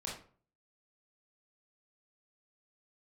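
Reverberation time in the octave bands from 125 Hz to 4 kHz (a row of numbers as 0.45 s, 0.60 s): 0.60 s, 0.50 s, 0.45 s, 0.45 s, 0.35 s, 0.30 s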